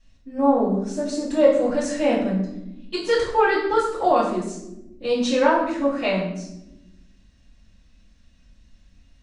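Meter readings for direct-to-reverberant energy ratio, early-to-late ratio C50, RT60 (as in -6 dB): -8.5 dB, 4.5 dB, 0.95 s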